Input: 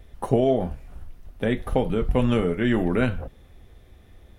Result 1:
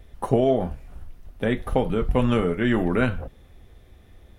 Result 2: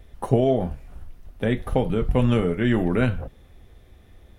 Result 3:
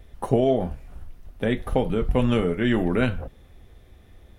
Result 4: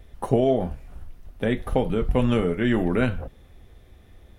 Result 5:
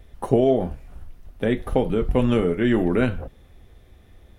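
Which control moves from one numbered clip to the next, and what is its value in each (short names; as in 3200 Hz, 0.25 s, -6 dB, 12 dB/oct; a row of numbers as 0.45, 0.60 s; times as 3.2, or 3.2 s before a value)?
dynamic EQ, frequency: 1200, 120, 3300, 9300, 350 Hz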